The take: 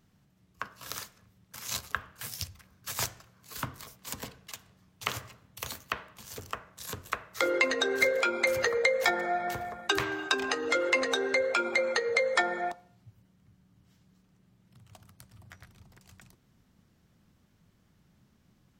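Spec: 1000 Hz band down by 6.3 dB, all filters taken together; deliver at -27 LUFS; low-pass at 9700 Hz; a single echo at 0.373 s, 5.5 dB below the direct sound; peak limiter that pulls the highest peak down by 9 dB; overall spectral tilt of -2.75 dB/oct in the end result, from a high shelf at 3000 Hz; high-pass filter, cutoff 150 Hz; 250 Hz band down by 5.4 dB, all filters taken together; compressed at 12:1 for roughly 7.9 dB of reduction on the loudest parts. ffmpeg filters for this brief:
-af "highpass=150,lowpass=9.7k,equalizer=f=250:t=o:g=-7,equalizer=f=1k:t=o:g=-8.5,highshelf=f=3k:g=-7,acompressor=threshold=-34dB:ratio=12,alimiter=level_in=2.5dB:limit=-24dB:level=0:latency=1,volume=-2.5dB,aecho=1:1:373:0.531,volume=14dB"

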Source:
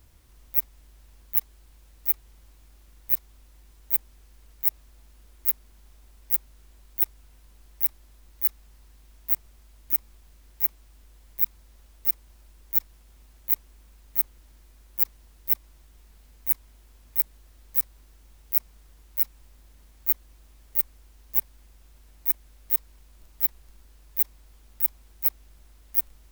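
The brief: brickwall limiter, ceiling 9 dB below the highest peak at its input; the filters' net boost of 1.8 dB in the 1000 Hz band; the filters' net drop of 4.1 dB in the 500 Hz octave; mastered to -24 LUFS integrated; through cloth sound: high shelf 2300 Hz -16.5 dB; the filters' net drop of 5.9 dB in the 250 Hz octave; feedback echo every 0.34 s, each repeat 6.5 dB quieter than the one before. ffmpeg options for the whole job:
-af "equalizer=f=250:t=o:g=-7,equalizer=f=500:t=o:g=-5,equalizer=f=1k:t=o:g=7.5,alimiter=limit=-10dB:level=0:latency=1,highshelf=f=2.3k:g=-16.5,aecho=1:1:340|680|1020|1360|1700|2040:0.473|0.222|0.105|0.0491|0.0231|0.0109,volume=24dB"

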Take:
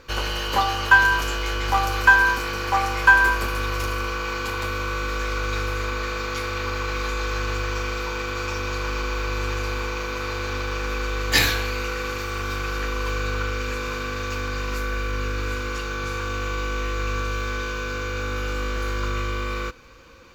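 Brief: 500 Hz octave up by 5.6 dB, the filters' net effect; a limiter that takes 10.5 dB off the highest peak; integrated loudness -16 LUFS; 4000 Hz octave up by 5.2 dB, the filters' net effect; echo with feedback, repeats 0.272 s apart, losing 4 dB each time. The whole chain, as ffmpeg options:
-af "equalizer=f=500:t=o:g=6,equalizer=f=4k:t=o:g=6.5,alimiter=limit=-10.5dB:level=0:latency=1,aecho=1:1:272|544|816|1088|1360|1632|1904|2176|2448:0.631|0.398|0.25|0.158|0.0994|0.0626|0.0394|0.0249|0.0157,volume=3.5dB"

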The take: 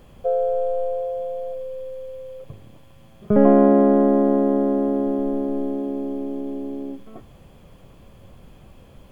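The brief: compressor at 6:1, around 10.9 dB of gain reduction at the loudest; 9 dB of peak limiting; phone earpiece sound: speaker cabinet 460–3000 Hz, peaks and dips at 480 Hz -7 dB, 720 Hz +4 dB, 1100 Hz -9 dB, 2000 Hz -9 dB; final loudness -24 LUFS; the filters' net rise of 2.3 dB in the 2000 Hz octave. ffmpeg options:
-af "equalizer=f=2k:t=o:g=8.5,acompressor=threshold=-21dB:ratio=6,alimiter=limit=-19dB:level=0:latency=1,highpass=460,equalizer=f=480:t=q:w=4:g=-7,equalizer=f=720:t=q:w=4:g=4,equalizer=f=1.1k:t=q:w=4:g=-9,equalizer=f=2k:t=q:w=4:g=-9,lowpass=f=3k:w=0.5412,lowpass=f=3k:w=1.3066,volume=10.5dB"

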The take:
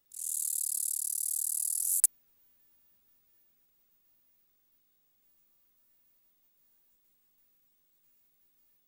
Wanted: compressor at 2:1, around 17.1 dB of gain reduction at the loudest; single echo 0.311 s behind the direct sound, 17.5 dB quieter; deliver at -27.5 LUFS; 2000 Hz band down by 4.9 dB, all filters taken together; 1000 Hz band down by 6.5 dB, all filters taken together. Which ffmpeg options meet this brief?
-af "equalizer=f=1k:t=o:g=-7.5,equalizer=f=2k:t=o:g=-4,acompressor=threshold=-50dB:ratio=2,aecho=1:1:311:0.133,volume=14dB"

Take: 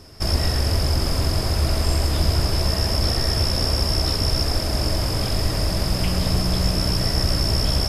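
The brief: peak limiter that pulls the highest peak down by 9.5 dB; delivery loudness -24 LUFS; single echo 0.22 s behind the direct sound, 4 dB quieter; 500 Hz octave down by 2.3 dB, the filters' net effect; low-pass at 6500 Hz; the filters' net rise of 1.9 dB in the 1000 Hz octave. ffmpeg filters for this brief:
-af "lowpass=6.5k,equalizer=f=500:t=o:g=-4.5,equalizer=f=1k:t=o:g=4,alimiter=limit=-17dB:level=0:latency=1,aecho=1:1:220:0.631,volume=0.5dB"

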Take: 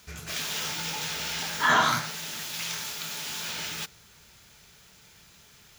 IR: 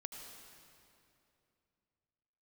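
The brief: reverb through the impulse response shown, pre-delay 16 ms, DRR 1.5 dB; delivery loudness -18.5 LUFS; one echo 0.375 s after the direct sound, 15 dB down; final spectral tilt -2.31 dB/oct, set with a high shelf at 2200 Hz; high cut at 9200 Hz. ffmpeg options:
-filter_complex "[0:a]lowpass=9.2k,highshelf=f=2.2k:g=-6.5,aecho=1:1:375:0.178,asplit=2[a][b];[1:a]atrim=start_sample=2205,adelay=16[c];[b][c]afir=irnorm=-1:irlink=0,volume=1.5dB[d];[a][d]amix=inputs=2:normalize=0,volume=11dB"

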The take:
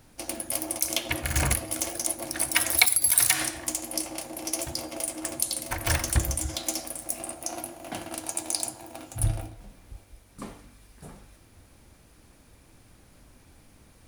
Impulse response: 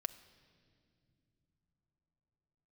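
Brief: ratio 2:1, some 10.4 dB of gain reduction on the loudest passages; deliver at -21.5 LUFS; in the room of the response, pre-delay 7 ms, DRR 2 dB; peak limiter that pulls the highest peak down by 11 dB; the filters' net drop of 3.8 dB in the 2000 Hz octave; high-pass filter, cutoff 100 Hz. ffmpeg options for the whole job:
-filter_complex "[0:a]highpass=100,equalizer=f=2k:t=o:g=-4.5,acompressor=threshold=-36dB:ratio=2,alimiter=limit=-23dB:level=0:latency=1,asplit=2[a][b];[1:a]atrim=start_sample=2205,adelay=7[c];[b][c]afir=irnorm=-1:irlink=0,volume=-0.5dB[d];[a][d]amix=inputs=2:normalize=0,volume=14.5dB"

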